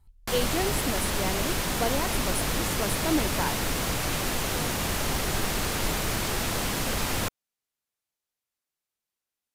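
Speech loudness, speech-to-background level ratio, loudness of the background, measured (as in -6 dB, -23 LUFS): -32.0 LUFS, -4.0 dB, -28.0 LUFS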